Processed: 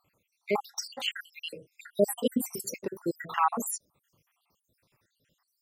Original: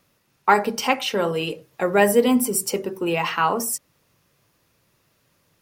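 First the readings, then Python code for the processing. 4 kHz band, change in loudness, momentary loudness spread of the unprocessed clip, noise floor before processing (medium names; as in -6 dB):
-7.5 dB, -10.5 dB, 10 LU, -66 dBFS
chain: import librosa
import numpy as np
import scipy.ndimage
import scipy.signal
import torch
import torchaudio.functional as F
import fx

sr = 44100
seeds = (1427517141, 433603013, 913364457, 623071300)

y = fx.spec_dropout(x, sr, seeds[0], share_pct=74)
y = y * 10.0 ** (-3.5 / 20.0)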